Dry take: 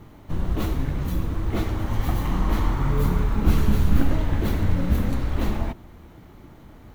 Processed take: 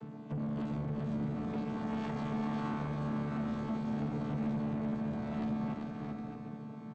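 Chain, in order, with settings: vocoder on a held chord bare fifth, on D3; 1.71–4.02 s: bass shelf 160 Hz -9.5 dB; compression, threshold -33 dBFS, peak gain reduction 11.5 dB; saturation -38 dBFS, distortion -10 dB; bouncing-ball echo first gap 390 ms, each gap 0.6×, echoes 5; trim +5 dB

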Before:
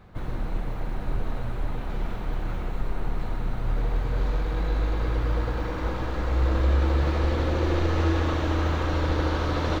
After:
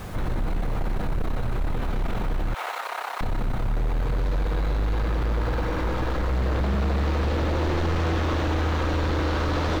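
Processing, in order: sine folder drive 9 dB, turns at -11.5 dBFS; added noise pink -48 dBFS; 2.54–3.21 s: high-pass 700 Hz 24 dB/octave; peak limiter -22 dBFS, peak gain reduction 11 dB; trim +2 dB

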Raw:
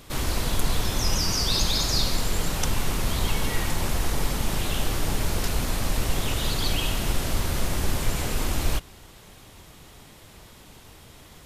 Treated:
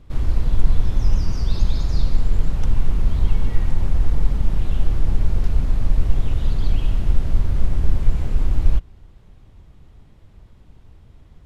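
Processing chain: in parallel at -9 dB: crossover distortion -37.5 dBFS; on the sum: RIAA curve playback; trim -10.5 dB

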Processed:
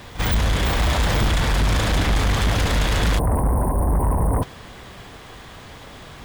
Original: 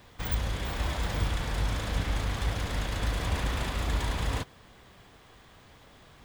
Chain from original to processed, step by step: pre-echo 45 ms -18 dB; spectral selection erased 3.19–4.43 s, 1.1–8.5 kHz; sine folder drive 9 dB, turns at -16 dBFS; trim +1.5 dB

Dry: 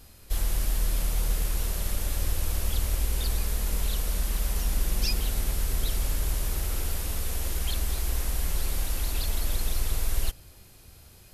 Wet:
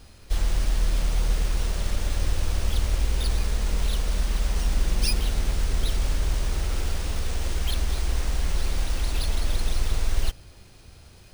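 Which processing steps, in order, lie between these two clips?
careless resampling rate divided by 3×, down filtered, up hold; trim +3.5 dB

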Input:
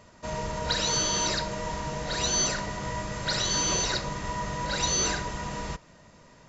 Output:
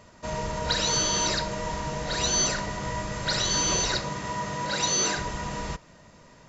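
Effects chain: 4.01–5.16 s: high-pass 79 Hz -> 170 Hz 12 dB/octave; trim +1.5 dB

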